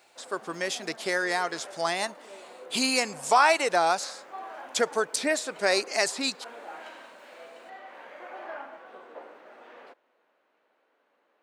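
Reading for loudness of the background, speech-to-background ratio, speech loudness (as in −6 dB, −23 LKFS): −45.5 LKFS, 19.0 dB, −26.5 LKFS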